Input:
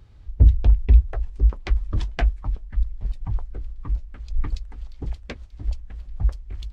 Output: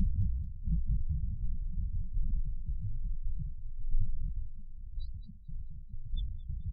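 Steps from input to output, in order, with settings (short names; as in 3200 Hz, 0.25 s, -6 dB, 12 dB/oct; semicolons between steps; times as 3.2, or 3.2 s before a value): slices in reverse order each 0.112 s, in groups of 5; notches 60/120/180 Hz; in parallel at -3 dB: wavefolder -13 dBFS; on the sum: loudest bins only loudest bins 8; bell 64 Hz -10.5 dB 1.5 oct; on a send: feedback echo 0.22 s, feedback 37%, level -11 dB; on the sum: FFT band-reject 220–2900 Hz; flange 1.3 Hz, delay 5 ms, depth 9.6 ms, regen +34%; sustainer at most 44 dB/s; gain -5.5 dB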